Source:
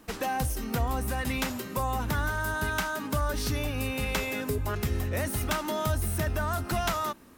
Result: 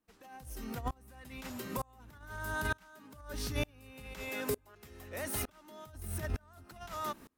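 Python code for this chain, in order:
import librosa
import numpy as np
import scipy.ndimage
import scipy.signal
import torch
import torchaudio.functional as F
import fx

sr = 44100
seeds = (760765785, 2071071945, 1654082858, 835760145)

y = fx.bass_treble(x, sr, bass_db=-10, treble_db=0, at=(4.29, 5.49))
y = fx.over_compress(y, sr, threshold_db=-30.0, ratio=-0.5)
y = fx.tremolo_decay(y, sr, direction='swelling', hz=1.1, depth_db=32)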